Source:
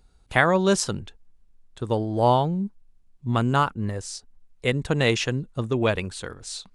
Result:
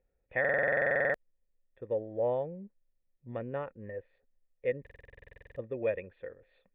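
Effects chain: vocal tract filter e; stuck buffer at 0.4/4.82, samples 2048, times 15

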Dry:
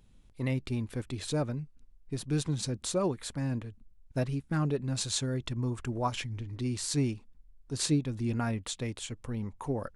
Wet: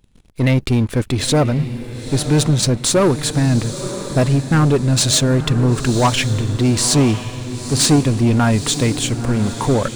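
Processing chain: sample leveller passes 3; diffused feedback echo 0.962 s, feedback 44%, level -10.5 dB; gain +7.5 dB

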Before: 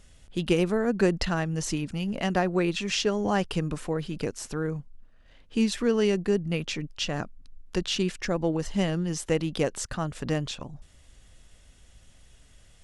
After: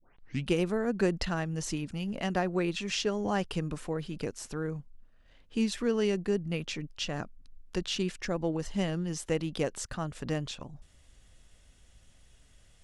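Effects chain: tape start at the beginning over 0.49 s; gain -4.5 dB

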